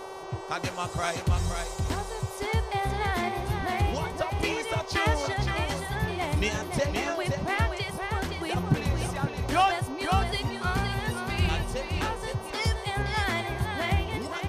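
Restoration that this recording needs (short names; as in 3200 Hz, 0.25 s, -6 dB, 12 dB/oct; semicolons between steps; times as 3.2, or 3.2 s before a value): de-hum 383.3 Hz, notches 17; noise print and reduce 30 dB; inverse comb 0.519 s -5.5 dB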